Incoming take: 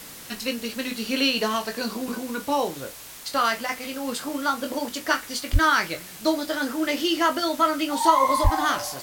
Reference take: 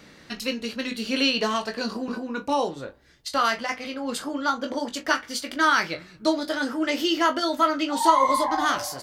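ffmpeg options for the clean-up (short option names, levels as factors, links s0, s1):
-filter_complex "[0:a]asplit=3[s0][s1][s2];[s0]afade=t=out:st=5.52:d=0.02[s3];[s1]highpass=f=140:w=0.5412,highpass=f=140:w=1.3066,afade=t=in:st=5.52:d=0.02,afade=t=out:st=5.64:d=0.02[s4];[s2]afade=t=in:st=5.64:d=0.02[s5];[s3][s4][s5]amix=inputs=3:normalize=0,asplit=3[s6][s7][s8];[s6]afade=t=out:st=8.43:d=0.02[s9];[s7]highpass=f=140:w=0.5412,highpass=f=140:w=1.3066,afade=t=in:st=8.43:d=0.02,afade=t=out:st=8.55:d=0.02[s10];[s8]afade=t=in:st=8.55:d=0.02[s11];[s9][s10][s11]amix=inputs=3:normalize=0,afwtdn=0.0089"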